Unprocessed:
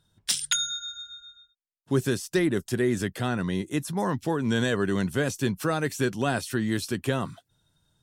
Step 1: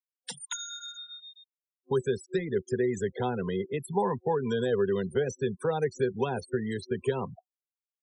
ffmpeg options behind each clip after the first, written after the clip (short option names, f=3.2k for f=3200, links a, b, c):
-filter_complex "[0:a]acrossover=split=230|980|2300[a][b][c][d];[a]acompressor=threshold=-36dB:ratio=4[e];[b]acompressor=threshold=-34dB:ratio=4[f];[c]acompressor=threshold=-46dB:ratio=4[g];[d]acompressor=threshold=-42dB:ratio=4[h];[e][f][g][h]amix=inputs=4:normalize=0,afftfilt=real='re*gte(hypot(re,im),0.0178)':imag='im*gte(hypot(re,im),0.0178)':win_size=1024:overlap=0.75,superequalizer=6b=0.447:7b=3.16:9b=2.82:15b=2:16b=1.58"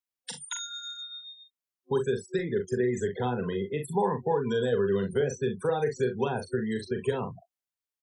-af "aecho=1:1:41|63:0.501|0.133"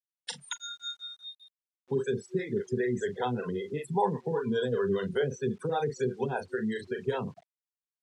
-filter_complex "[0:a]acrossover=split=400[a][b];[a]aeval=exprs='val(0)*(1-1/2+1/2*cos(2*PI*5.1*n/s))':c=same[c];[b]aeval=exprs='val(0)*(1-1/2-1/2*cos(2*PI*5.1*n/s))':c=same[d];[c][d]amix=inputs=2:normalize=0,acrusher=bits=10:mix=0:aa=0.000001,highpass=110,lowpass=6.8k,volume=3.5dB"